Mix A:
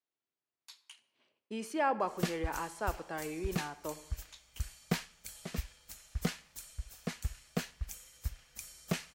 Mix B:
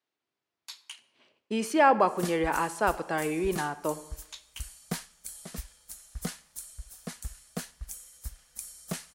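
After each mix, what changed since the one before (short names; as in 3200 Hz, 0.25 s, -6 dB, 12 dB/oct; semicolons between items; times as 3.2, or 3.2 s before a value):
speech +10.0 dB; background: add fifteen-band EQ 100 Hz -10 dB, 400 Hz -3 dB, 2500 Hz -6 dB, 10000 Hz +11 dB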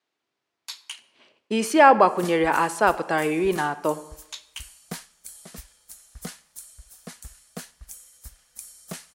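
speech +7.0 dB; master: add low shelf 150 Hz -6 dB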